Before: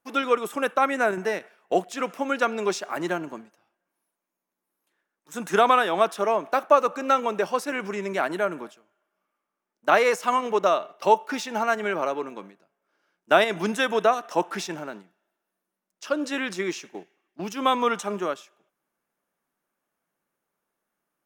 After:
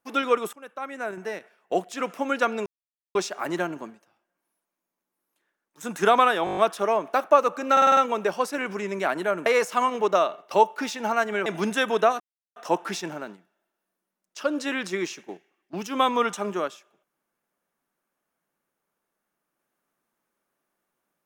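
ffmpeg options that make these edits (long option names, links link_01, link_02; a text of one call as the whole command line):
ffmpeg -i in.wav -filter_complex "[0:a]asplit=17[link_01][link_02][link_03][link_04][link_05][link_06][link_07][link_08][link_09][link_10][link_11][link_12][link_13][link_14][link_15][link_16][link_17];[link_01]atrim=end=0.53,asetpts=PTS-STARTPTS,afade=type=out:start_time=0.526:duration=0.004:curve=hsin:silence=0.0630957[link_18];[link_02]atrim=start=0.53:end=2.66,asetpts=PTS-STARTPTS,afade=type=in:duration=1.63:silence=0.0630957,afade=type=out:start_time=2.126:duration=0.004:curve=hsin,apad=pad_dur=0.49[link_19];[link_03]atrim=start=2.66:end=5.982,asetpts=PTS-STARTPTS,afade=type=in:duration=0.004:curve=hsin[link_20];[link_04]atrim=start=5.958:end=5.982[link_21];[link_05]atrim=start=5.958:end=5.982[link_22];[link_06]atrim=start=5.958:end=5.982[link_23];[link_07]atrim=start=5.958:end=5.982[link_24];[link_08]atrim=start=5.958:end=5.982[link_25];[link_09]atrim=start=5.958:end=7.162[link_26];[link_10]atrim=start=7.108:end=7.162[link_27];[link_11]atrim=start=7.108:end=7.162[link_28];[link_12]atrim=start=7.108:end=7.162[link_29];[link_13]atrim=start=7.108:end=7.162[link_30];[link_14]atrim=start=7.108:end=8.602[link_31];[link_15]atrim=start=9.968:end=11.972[link_32];[link_16]atrim=start=13.478:end=14.22,asetpts=PTS-STARTPTS,afade=type=out:start_time=0.738:duration=0.004:curve=hsin,apad=pad_dur=0.36[link_33];[link_17]atrim=start=14.22,asetpts=PTS-STARTPTS,afade=type=in:duration=0.004:curve=hsin[link_34];[link_18][link_19][link_20]concat=n=3:v=0:a=1[link_35];[link_35][link_21]acrossfade=duration=0.004:curve1=hsin:curve2=hsin[link_36];[link_36][link_22]acrossfade=duration=0.004:curve1=hsin:curve2=hsin[link_37];[link_37][link_23]acrossfade=duration=0.004:curve1=hsin:curve2=hsin[link_38];[link_38][link_24]acrossfade=duration=0.004:curve1=hsin:curve2=hsin[link_39];[link_39][link_25]acrossfade=duration=0.004:curve1=hsin:curve2=hsin[link_40];[link_40][link_26]acrossfade=duration=0.004:curve1=hsin:curve2=hsin[link_41];[link_41][link_27]acrossfade=duration=0.004:curve1=hsin:curve2=hsin[link_42];[link_42][link_28]acrossfade=duration=0.004:curve1=hsin:curve2=hsin[link_43];[link_43][link_29]acrossfade=duration=0.004:curve1=hsin:curve2=hsin[link_44];[link_44][link_30]acrossfade=duration=0.004:curve1=hsin:curve2=hsin[link_45];[link_45][link_31]acrossfade=duration=0.004:curve1=hsin:curve2=hsin[link_46];[link_46][link_32]acrossfade=duration=0.004:curve1=hsin:curve2=hsin[link_47];[link_33][link_34]concat=n=2:v=0:a=1[link_48];[link_47][link_48]acrossfade=duration=0.004:curve1=hsin:curve2=hsin" out.wav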